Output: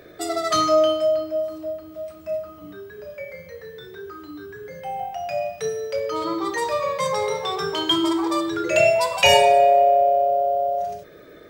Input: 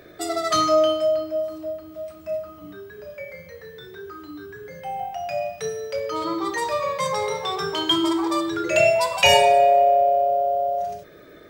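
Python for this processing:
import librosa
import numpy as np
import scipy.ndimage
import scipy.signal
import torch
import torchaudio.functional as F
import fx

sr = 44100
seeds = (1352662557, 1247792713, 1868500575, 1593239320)

y = fx.peak_eq(x, sr, hz=480.0, db=3.5, octaves=0.4)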